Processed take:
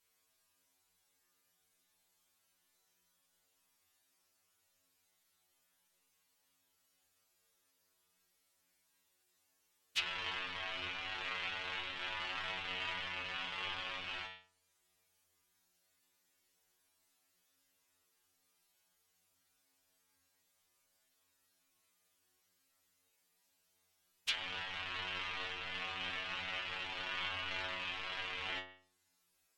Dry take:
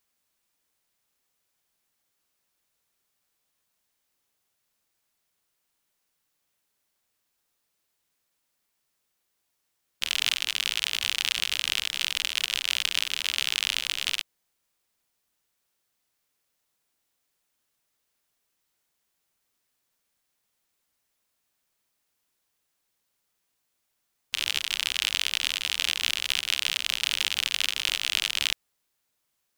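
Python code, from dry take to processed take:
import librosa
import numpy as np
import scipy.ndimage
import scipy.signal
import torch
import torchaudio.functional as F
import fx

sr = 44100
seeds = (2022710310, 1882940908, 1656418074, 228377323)

y = fx.spec_dilate(x, sr, span_ms=120)
y = fx.stiff_resonator(y, sr, f0_hz=89.0, decay_s=0.58, stiffness=0.002)
y = fx.env_lowpass_down(y, sr, base_hz=1200.0, full_db=-34.5)
y = y * 10.0 ** (8.0 / 20.0)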